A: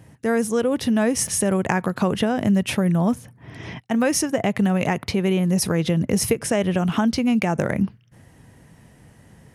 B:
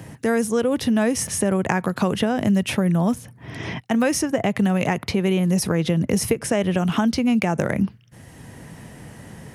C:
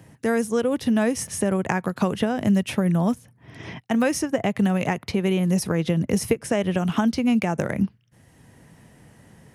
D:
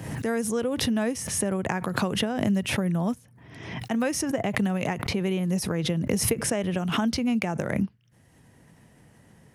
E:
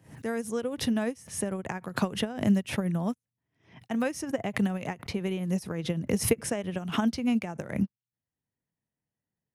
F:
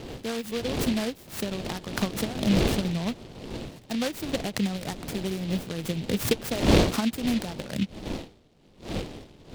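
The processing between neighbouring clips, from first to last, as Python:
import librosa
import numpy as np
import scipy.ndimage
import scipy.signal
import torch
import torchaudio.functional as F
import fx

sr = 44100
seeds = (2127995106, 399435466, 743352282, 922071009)

y1 = fx.band_squash(x, sr, depth_pct=40)
y2 = fx.upward_expand(y1, sr, threshold_db=-36.0, expansion=1.5)
y3 = fx.pre_swell(y2, sr, db_per_s=50.0)
y3 = y3 * librosa.db_to_amplitude(-5.0)
y4 = fx.upward_expand(y3, sr, threshold_db=-46.0, expansion=2.5)
y4 = y4 * librosa.db_to_amplitude(2.5)
y5 = fx.dmg_wind(y4, sr, seeds[0], corner_hz=400.0, level_db=-32.0)
y5 = fx.noise_mod_delay(y5, sr, seeds[1], noise_hz=2900.0, depth_ms=0.12)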